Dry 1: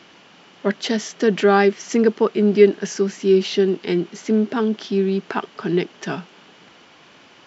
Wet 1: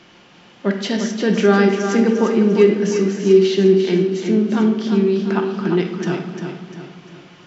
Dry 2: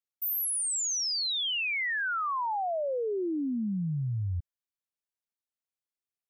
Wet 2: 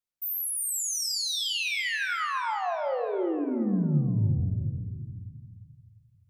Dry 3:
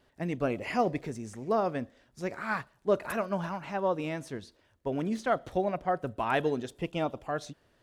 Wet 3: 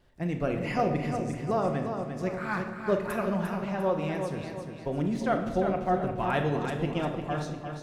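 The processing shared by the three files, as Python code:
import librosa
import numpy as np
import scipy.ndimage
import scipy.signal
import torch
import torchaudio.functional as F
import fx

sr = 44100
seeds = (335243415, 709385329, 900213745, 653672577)

y = fx.low_shelf(x, sr, hz=110.0, db=11.0)
y = fx.echo_feedback(y, sr, ms=349, feedback_pct=44, wet_db=-7.0)
y = fx.room_shoebox(y, sr, seeds[0], volume_m3=700.0, walls='mixed', distance_m=0.9)
y = y * librosa.db_to_amplitude(-1.5)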